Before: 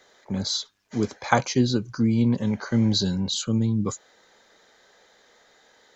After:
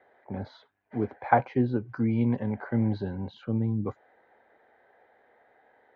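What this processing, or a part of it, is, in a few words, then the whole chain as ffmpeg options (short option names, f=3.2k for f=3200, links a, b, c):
bass cabinet: -filter_complex "[0:a]highpass=63,equalizer=f=180:t=q:w=4:g=-9,equalizer=f=750:t=q:w=4:g=7,equalizer=f=1.2k:t=q:w=4:g=-7,lowpass=f=2k:w=0.5412,lowpass=f=2k:w=1.3066,asettb=1/sr,asplit=3[a][b][c];[a]atrim=end=1.894[d];[b]atrim=start=1.89:end=2.43,asetpts=PTS-STARTPTS,afade=t=in:d=0.004:c=qsin,afade=t=out:st=0.536:d=0.004:c=qsin,highshelf=f=2.1k:g=12[e];[c]atrim=start=2.426[f];[d][e]acrossfade=d=0.004:c1=hsin:c2=qsin[g];[g][f]acrossfade=d=0.004:c1=qsin:c2=hsin,volume=-3dB"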